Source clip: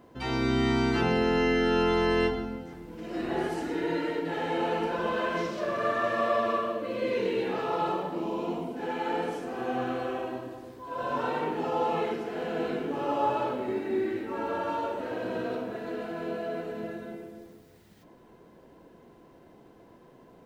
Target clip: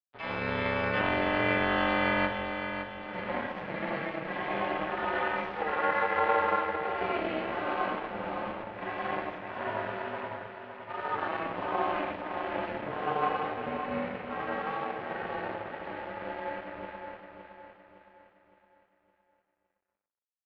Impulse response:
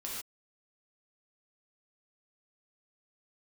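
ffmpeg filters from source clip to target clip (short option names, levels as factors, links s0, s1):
-filter_complex "[0:a]asplit=2[s0][s1];[s1]acrusher=bits=2:mix=0:aa=0.5,volume=0.251[s2];[s0][s2]amix=inputs=2:normalize=0,aeval=exprs='sgn(val(0))*max(abs(val(0))-0.01,0)':c=same,highpass=300,equalizer=f=660:t=q:w=4:g=6,equalizer=f=1100:t=q:w=4:g=4,equalizer=f=1600:t=q:w=4:g=6,equalizer=f=2200:t=q:w=4:g=6,lowpass=f=3200:w=0.5412,lowpass=f=3200:w=1.3066,asetrate=46722,aresample=44100,atempo=0.943874,aeval=exprs='val(0)*sin(2*PI*160*n/s)':c=same,aecho=1:1:563|1126|1689|2252|2815:0.398|0.171|0.0736|0.0317|0.0136"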